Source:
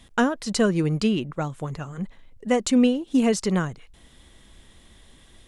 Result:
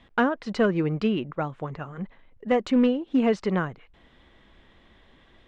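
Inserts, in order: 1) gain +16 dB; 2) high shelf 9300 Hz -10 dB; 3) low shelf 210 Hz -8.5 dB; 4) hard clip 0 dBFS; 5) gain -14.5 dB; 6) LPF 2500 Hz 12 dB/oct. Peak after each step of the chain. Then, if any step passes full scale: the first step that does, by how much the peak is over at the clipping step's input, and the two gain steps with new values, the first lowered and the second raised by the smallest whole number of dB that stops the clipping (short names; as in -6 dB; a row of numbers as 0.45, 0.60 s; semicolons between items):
+7.0, +7.0, +5.0, 0.0, -14.5, -14.0 dBFS; step 1, 5.0 dB; step 1 +11 dB, step 5 -9.5 dB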